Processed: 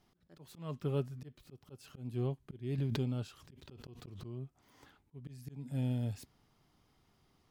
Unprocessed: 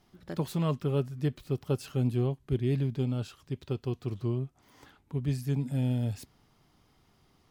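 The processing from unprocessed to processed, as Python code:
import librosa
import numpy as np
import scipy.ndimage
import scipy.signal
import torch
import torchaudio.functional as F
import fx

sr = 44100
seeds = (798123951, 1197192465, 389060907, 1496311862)

y = fx.auto_swell(x, sr, attack_ms=303.0)
y = fx.pre_swell(y, sr, db_per_s=27.0, at=(2.78, 4.44))
y = y * 10.0 ** (-5.5 / 20.0)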